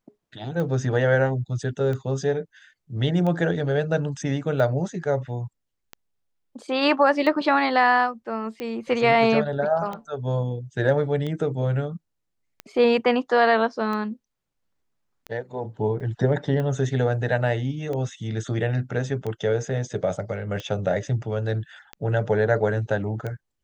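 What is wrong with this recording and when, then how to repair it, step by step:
tick 45 rpm -19 dBFS
16–16.01 gap 5.7 ms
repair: de-click; interpolate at 16, 5.7 ms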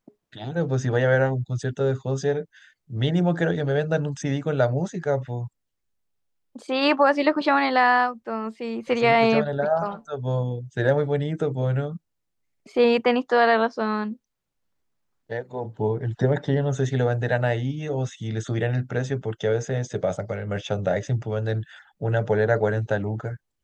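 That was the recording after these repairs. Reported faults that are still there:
none

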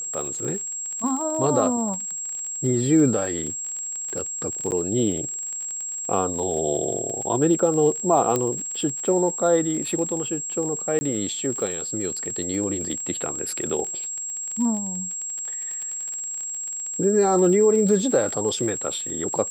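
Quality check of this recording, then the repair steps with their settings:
crackle 35/s -29 dBFS
tone 7600 Hz -28 dBFS
4.71–4.72 gap 9.5 ms
8.36 pop -9 dBFS
10.99–11.01 gap 20 ms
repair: de-click; notch 7600 Hz, Q 30; interpolate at 4.71, 9.5 ms; interpolate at 10.99, 20 ms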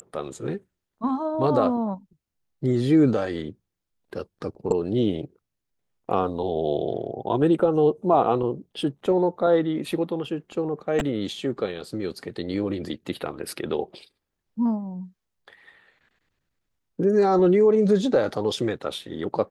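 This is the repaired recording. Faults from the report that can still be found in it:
none

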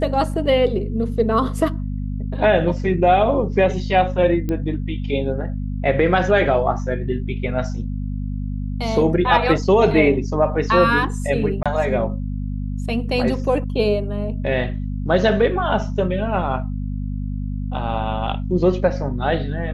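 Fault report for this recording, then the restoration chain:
hum 50 Hz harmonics 5 -25 dBFS
4.49 pop -13 dBFS
11.63–11.66 gap 26 ms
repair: de-click; de-hum 50 Hz, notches 5; interpolate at 11.63, 26 ms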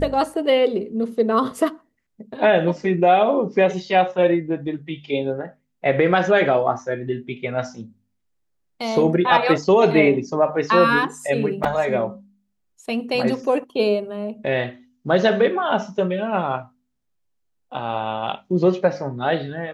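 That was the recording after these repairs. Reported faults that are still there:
none

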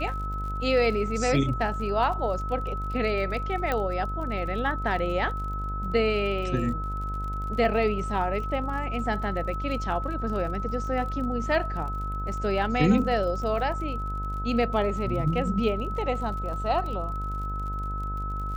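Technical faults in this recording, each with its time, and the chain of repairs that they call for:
buzz 50 Hz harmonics 31 -32 dBFS
crackle 42/s -36 dBFS
tone 1300 Hz -33 dBFS
3.72 pop -14 dBFS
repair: de-click; notch 1300 Hz, Q 30; de-hum 50 Hz, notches 31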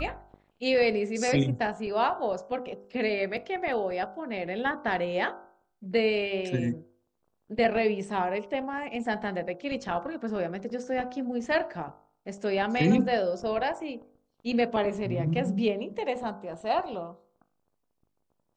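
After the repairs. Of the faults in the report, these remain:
3.72 pop

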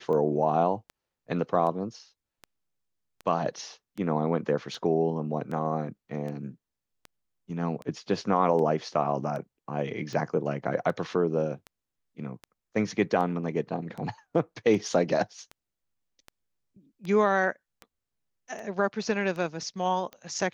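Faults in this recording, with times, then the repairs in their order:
tick 78 rpm -26 dBFS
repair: de-click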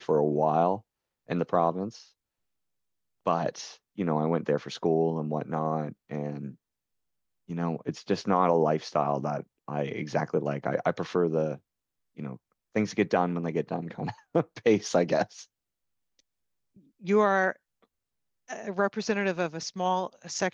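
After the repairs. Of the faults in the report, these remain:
none

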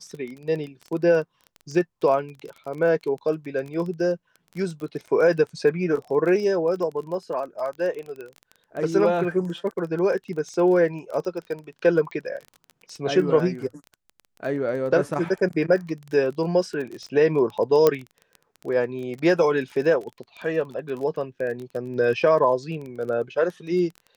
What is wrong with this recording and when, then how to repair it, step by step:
crackle 22/s -31 dBFS
17.87 pop -5 dBFS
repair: de-click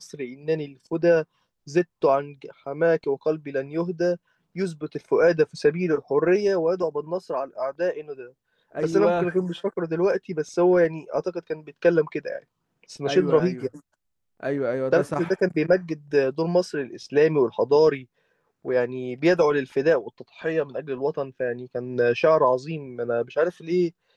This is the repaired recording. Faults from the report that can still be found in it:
17.87 pop

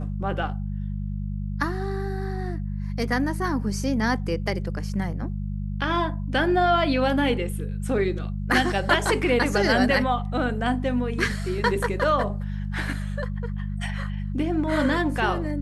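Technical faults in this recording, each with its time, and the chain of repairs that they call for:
hum 50 Hz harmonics 4 -29 dBFS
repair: de-hum 50 Hz, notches 4

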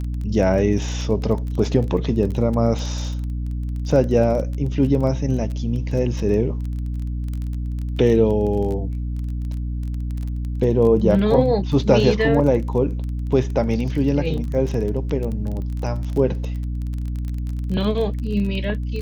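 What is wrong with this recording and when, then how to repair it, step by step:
crackle 22/s -27 dBFS
hum 60 Hz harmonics 5 -25 dBFS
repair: de-click; de-hum 60 Hz, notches 5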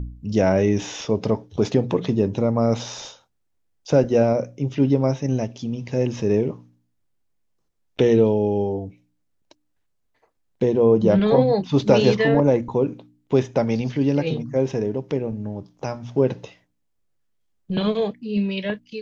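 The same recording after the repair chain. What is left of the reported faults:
none

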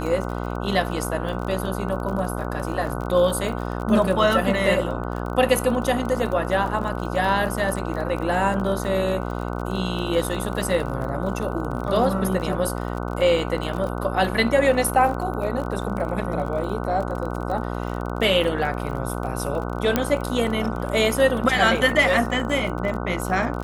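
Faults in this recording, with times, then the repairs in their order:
buzz 60 Hz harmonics 25 -28 dBFS
crackle 33/s -29 dBFS
19.96 pop -5 dBFS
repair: de-click; de-hum 60 Hz, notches 25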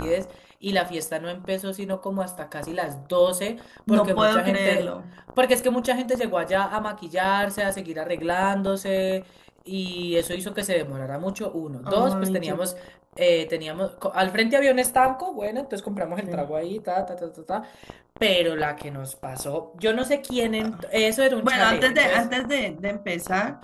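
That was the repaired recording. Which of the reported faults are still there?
none

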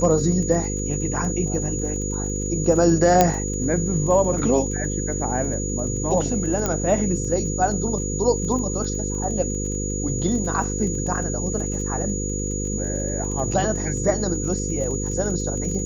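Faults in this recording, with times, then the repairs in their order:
buzz 50 Hz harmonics 10 -27 dBFS
crackle 20/s -30 dBFS
tone 6800 Hz -29 dBFS
3.21 pop -1 dBFS
6.66 pop -9 dBFS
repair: de-click; notch 6800 Hz, Q 30; de-hum 50 Hz, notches 10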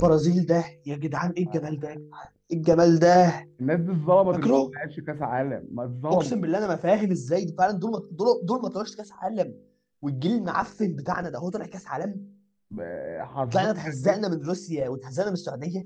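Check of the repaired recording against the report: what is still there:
3.21 pop

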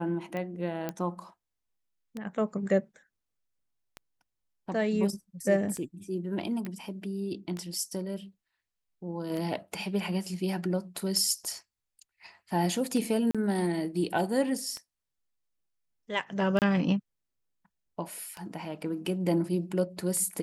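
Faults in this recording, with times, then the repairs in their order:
tick 33 1/3 rpm -23 dBFS
0.89 pop -18 dBFS
6.65 pop -24 dBFS
13.31–13.35 gap 36 ms
16.59–16.62 gap 28 ms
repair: de-click; interpolate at 13.31, 36 ms; interpolate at 16.59, 28 ms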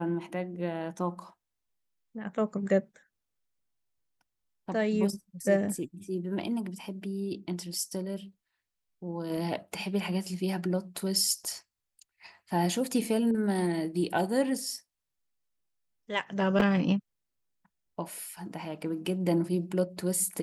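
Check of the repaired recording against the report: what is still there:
none

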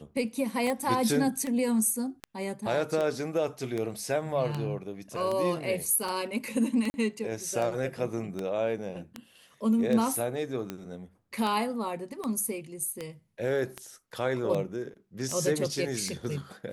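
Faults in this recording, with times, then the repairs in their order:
tick 78 rpm -19 dBFS
0.67 gap 2.1 ms
6.9–6.94 gap 40 ms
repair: de-click; interpolate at 0.67, 2.1 ms; interpolate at 6.9, 40 ms

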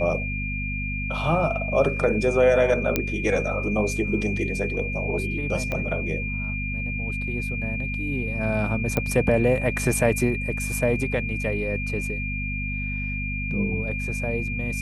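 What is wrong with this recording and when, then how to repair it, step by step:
hum 50 Hz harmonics 5 -30 dBFS
tone 2400 Hz -30 dBFS
2.96 pop -6 dBFS
5.72 pop -15 dBFS
8.97 pop -10 dBFS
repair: de-click; notch 2400 Hz, Q 30; de-hum 50 Hz, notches 5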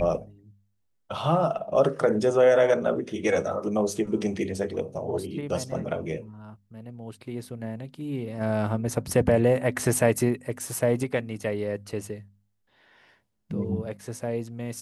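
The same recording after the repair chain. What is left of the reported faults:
5.72 pop

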